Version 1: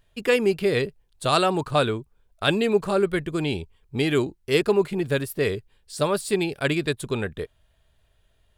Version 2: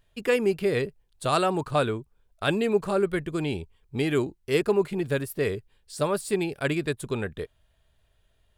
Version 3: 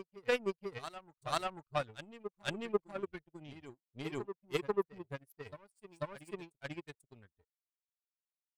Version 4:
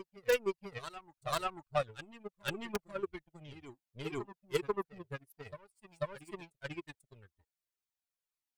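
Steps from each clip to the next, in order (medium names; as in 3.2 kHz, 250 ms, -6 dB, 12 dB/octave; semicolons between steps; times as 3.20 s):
dynamic bell 3.8 kHz, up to -5 dB, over -41 dBFS, Q 1.3; trim -2.5 dB
expander on every frequency bin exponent 2; power-law waveshaper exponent 2; reverse echo 491 ms -11 dB; trim -1.5 dB
in parallel at -4 dB: integer overflow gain 18 dB; on the sum: Shepard-style flanger falling 1.9 Hz; trim +1 dB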